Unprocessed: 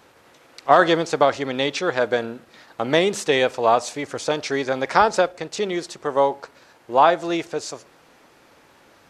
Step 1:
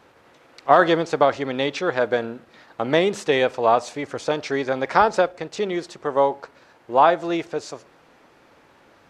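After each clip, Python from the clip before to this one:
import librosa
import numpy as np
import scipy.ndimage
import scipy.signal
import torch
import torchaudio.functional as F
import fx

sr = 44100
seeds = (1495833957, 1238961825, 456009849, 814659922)

y = fx.high_shelf(x, sr, hz=4800.0, db=-10.0)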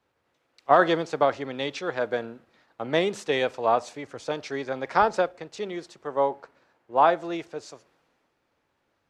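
y = fx.band_widen(x, sr, depth_pct=40)
y = y * librosa.db_to_amplitude(-6.0)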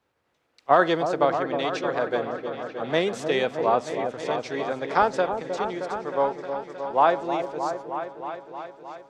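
y = fx.echo_opening(x, sr, ms=312, hz=750, octaves=1, feedback_pct=70, wet_db=-6)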